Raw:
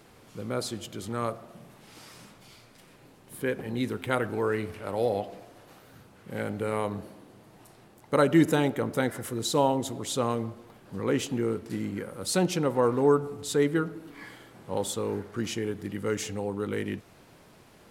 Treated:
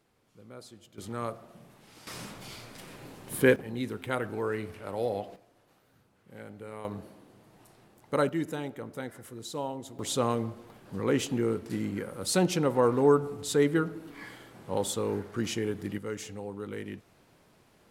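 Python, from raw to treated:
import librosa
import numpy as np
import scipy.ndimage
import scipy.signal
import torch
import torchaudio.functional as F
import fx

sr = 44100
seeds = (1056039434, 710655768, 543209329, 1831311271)

y = fx.gain(x, sr, db=fx.steps((0.0, -16.0), (0.98, -4.0), (2.07, 8.0), (3.56, -4.0), (5.36, -13.0), (6.85, -4.0), (8.29, -11.0), (9.99, 0.0), (15.98, -7.0)))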